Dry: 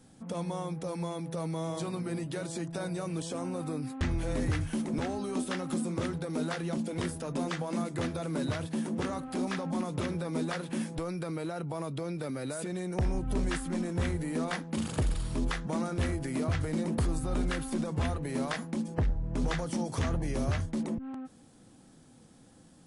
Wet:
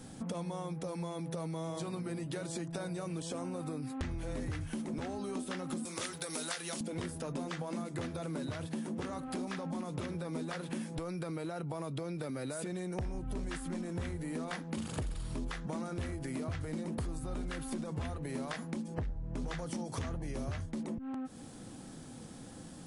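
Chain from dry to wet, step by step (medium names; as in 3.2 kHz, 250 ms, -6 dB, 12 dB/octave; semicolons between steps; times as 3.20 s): 5.85–6.81 s: tilt EQ +4.5 dB/octave; compression 5:1, threshold -46 dBFS, peak gain reduction 18.5 dB; trim +8.5 dB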